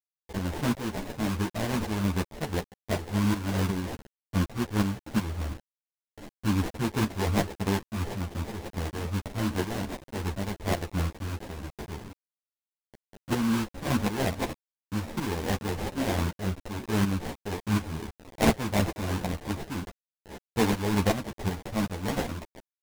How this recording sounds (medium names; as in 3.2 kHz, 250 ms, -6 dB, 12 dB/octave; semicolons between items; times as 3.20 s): aliases and images of a low sample rate 1.3 kHz, jitter 20%; tremolo saw up 2.7 Hz, depth 70%; a quantiser's noise floor 8-bit, dither none; a shimmering, thickened sound